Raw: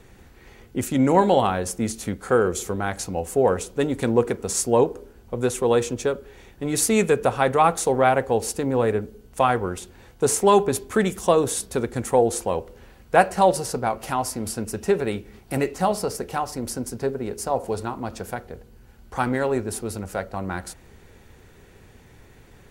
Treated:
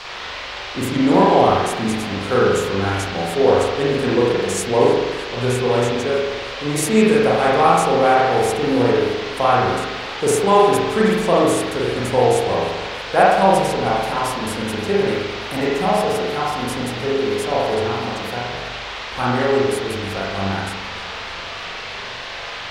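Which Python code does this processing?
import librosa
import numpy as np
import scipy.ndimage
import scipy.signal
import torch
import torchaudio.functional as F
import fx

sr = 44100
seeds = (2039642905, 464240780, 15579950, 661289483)

y = fx.dmg_noise_band(x, sr, seeds[0], low_hz=430.0, high_hz=4800.0, level_db=-34.0)
y = fx.rev_spring(y, sr, rt60_s=1.1, pass_ms=(41,), chirp_ms=45, drr_db=-5.5)
y = fx.echo_warbled(y, sr, ms=311, feedback_pct=74, rate_hz=2.8, cents=94, wet_db=-22.0)
y = y * librosa.db_to_amplitude(-2.0)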